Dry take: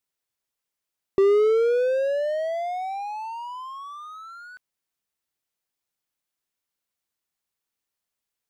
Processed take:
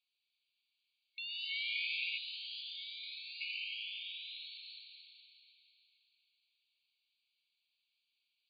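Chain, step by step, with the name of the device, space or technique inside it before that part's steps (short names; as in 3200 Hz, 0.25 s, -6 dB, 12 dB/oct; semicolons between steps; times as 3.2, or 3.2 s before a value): cathedral (reverb RT60 4.4 s, pre-delay 0.108 s, DRR -3 dB); FFT band-pass 2200–4800 Hz; 2.18–3.41 band shelf 1600 Hz -14.5 dB; gain +6 dB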